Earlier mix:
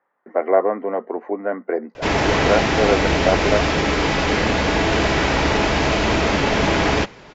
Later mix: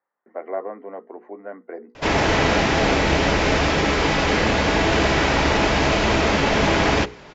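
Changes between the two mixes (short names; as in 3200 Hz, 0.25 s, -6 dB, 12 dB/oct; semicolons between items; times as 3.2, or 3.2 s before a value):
speech -11.5 dB; master: add notches 60/120/180/240/300/360/420/480 Hz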